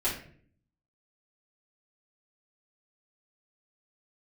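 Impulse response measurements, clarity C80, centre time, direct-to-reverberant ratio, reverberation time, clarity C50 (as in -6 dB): 10.5 dB, 29 ms, -10.5 dB, 0.55 s, 6.0 dB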